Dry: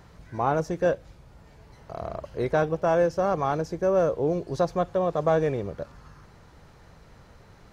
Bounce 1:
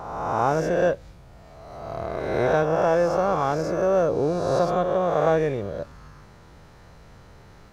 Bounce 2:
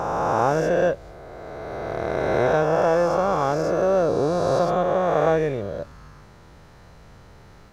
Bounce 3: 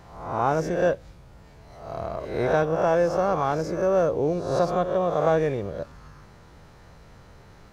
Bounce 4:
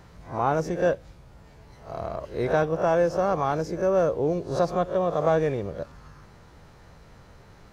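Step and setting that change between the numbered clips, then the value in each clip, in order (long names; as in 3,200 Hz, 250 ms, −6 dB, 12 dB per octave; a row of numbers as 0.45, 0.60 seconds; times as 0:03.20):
peak hold with a rise ahead of every peak, rising 60 dB in: 1.5, 3.15, 0.72, 0.32 seconds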